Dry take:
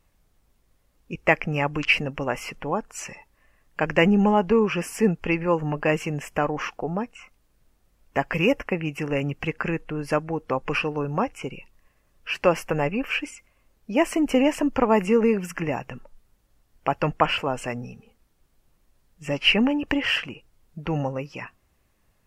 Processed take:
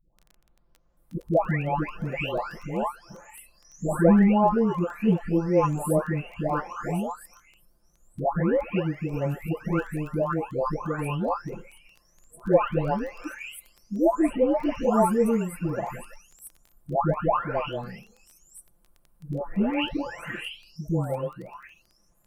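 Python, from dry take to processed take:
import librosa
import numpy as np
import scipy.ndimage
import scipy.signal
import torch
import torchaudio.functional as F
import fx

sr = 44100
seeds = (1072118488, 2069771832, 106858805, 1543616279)

y = fx.spec_delay(x, sr, highs='late', ms=969)
y = fx.band_shelf(y, sr, hz=3600.0, db=-11.0, octaves=2.3)
y = fx.dmg_crackle(y, sr, seeds[0], per_s=11.0, level_db=-39.0)
y = y * librosa.db_to_amplitude(2.0)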